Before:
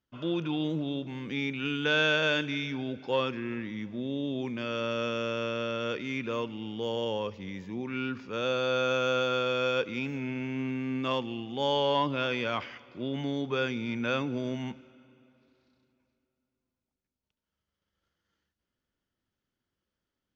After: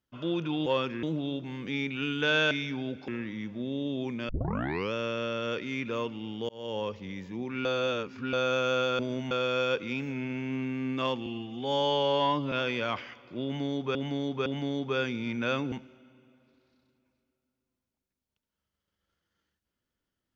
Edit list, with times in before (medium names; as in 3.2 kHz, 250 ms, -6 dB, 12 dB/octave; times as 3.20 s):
2.14–2.52 s: delete
3.09–3.46 s: move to 0.66 s
4.67 s: tape start 0.64 s
6.87–7.19 s: fade in
8.03–8.71 s: reverse
11.32–12.16 s: stretch 1.5×
13.08–13.59 s: loop, 3 plays
14.34–14.66 s: move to 9.37 s